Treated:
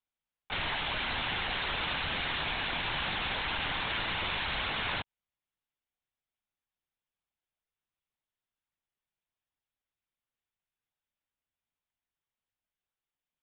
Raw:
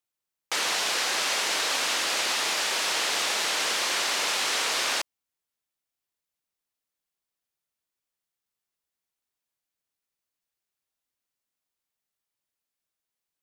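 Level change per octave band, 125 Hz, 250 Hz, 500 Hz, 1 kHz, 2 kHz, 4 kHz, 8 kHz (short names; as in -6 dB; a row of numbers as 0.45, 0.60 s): n/a, +0.5 dB, -7.0 dB, -4.5 dB, -4.5 dB, -8.0 dB, under -40 dB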